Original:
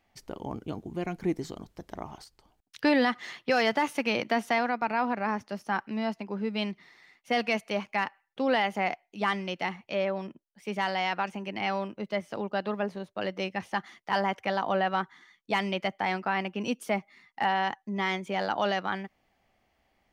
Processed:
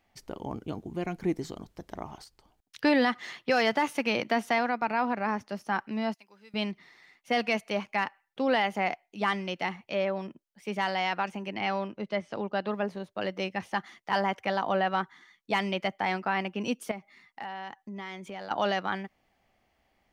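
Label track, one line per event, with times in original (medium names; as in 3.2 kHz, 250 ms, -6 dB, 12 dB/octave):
6.140000	6.540000	pre-emphasis filter coefficient 0.97
11.540000	12.690000	low-pass 6.1 kHz
16.910000	18.510000	compression 2.5:1, threshold -40 dBFS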